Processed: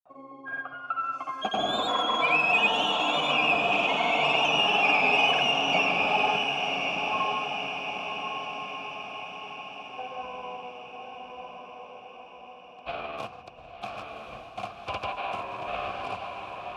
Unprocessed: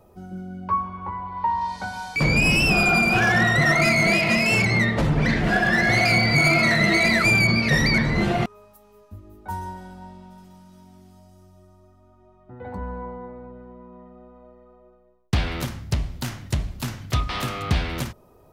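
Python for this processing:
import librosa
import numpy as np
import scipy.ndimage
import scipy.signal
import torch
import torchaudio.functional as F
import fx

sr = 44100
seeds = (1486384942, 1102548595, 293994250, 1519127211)

p1 = fx.speed_glide(x, sr, from_pct=148, to_pct=73)
p2 = fx.granulator(p1, sr, seeds[0], grain_ms=100.0, per_s=20.0, spray_ms=100.0, spread_st=0)
p3 = fx.vowel_filter(p2, sr, vowel='a')
p4 = p3 + fx.echo_diffused(p3, sr, ms=1090, feedback_pct=55, wet_db=-4.5, dry=0)
y = p4 * 10.0 ** (9.0 / 20.0)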